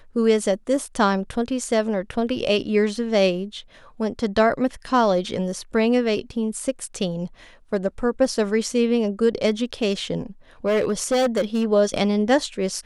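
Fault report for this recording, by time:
10.66–11.65 clipped -16 dBFS

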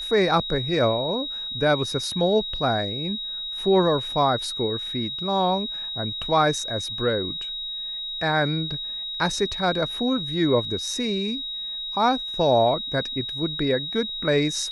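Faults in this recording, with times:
tone 3800 Hz -29 dBFS

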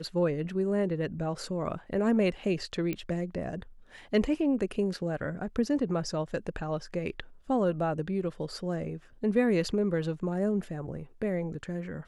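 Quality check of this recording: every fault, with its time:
2.93 pop -19 dBFS

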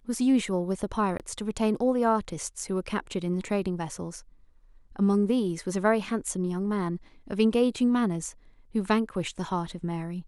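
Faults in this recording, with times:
1.18–1.2 gap 18 ms

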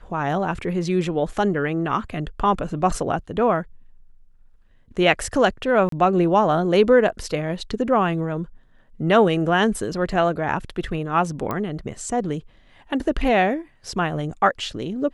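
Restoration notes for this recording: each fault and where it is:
5.89–5.92 gap 33 ms
11.51 pop -13 dBFS

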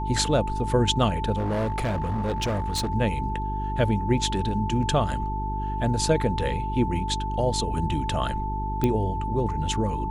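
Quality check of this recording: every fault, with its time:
hum 50 Hz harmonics 8 -30 dBFS
tone 880 Hz -30 dBFS
1.37–2.89 clipped -22.5 dBFS
8.84 pop -11 dBFS

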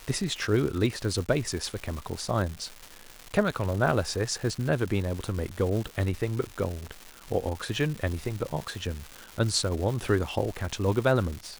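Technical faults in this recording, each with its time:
crackle 400/s -33 dBFS

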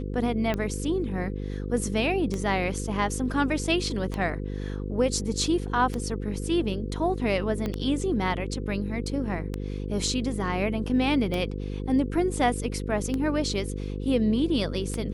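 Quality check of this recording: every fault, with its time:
buzz 50 Hz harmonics 10 -32 dBFS
tick 33 1/3 rpm -16 dBFS
7.66 pop -17 dBFS

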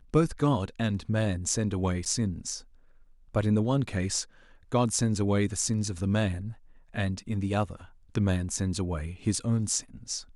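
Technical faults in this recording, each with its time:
2.05–2.06 gap 8.4 ms

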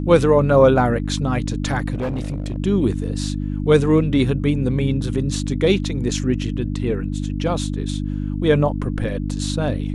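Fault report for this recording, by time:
hum 50 Hz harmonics 6 -24 dBFS
1.94–2.58 clipped -20 dBFS

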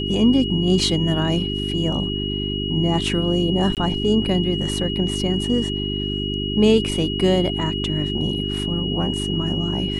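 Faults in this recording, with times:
hum 50 Hz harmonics 8 -26 dBFS
tone 2900 Hz -27 dBFS
3.75–3.77 gap 18 ms

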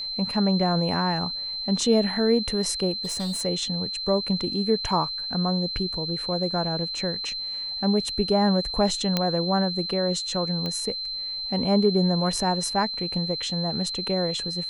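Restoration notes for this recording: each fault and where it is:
tone 4100 Hz -29 dBFS
3.04–3.42 clipped -25 dBFS
9.17 pop -8 dBFS
10.66 pop -17 dBFS

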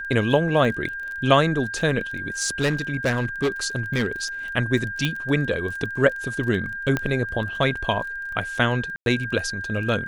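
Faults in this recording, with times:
crackle 19/s -31 dBFS
tone 1600 Hz -29 dBFS
2.42–4.24 clipped -17 dBFS
5.05 pop -10 dBFS
6.97 pop -10 dBFS
8.96–9.06 gap 0.102 s

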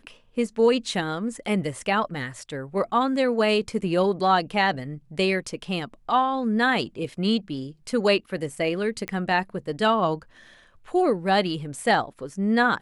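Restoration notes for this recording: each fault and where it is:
9.08 pop -15 dBFS

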